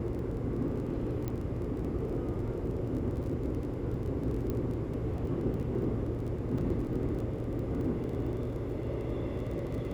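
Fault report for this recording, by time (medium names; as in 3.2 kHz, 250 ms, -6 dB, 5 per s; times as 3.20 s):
crackle 21 per s -39 dBFS
1.28 s: pop -22 dBFS
4.50 s: pop -22 dBFS
6.58 s: dropout 4.2 ms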